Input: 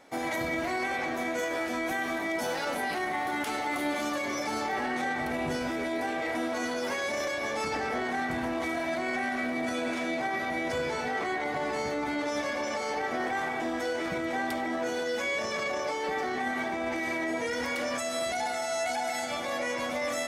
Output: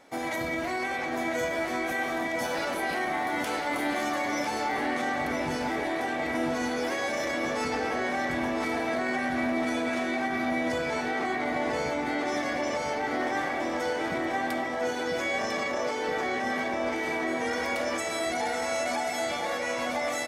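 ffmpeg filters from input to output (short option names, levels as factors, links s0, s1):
-filter_complex "[0:a]asplit=2[s0][s1];[s1]adelay=999,lowpass=f=4300:p=1,volume=0.631,asplit=2[s2][s3];[s3]adelay=999,lowpass=f=4300:p=1,volume=0.53,asplit=2[s4][s5];[s5]adelay=999,lowpass=f=4300:p=1,volume=0.53,asplit=2[s6][s7];[s7]adelay=999,lowpass=f=4300:p=1,volume=0.53,asplit=2[s8][s9];[s9]adelay=999,lowpass=f=4300:p=1,volume=0.53,asplit=2[s10][s11];[s11]adelay=999,lowpass=f=4300:p=1,volume=0.53,asplit=2[s12][s13];[s13]adelay=999,lowpass=f=4300:p=1,volume=0.53[s14];[s0][s2][s4][s6][s8][s10][s12][s14]amix=inputs=8:normalize=0"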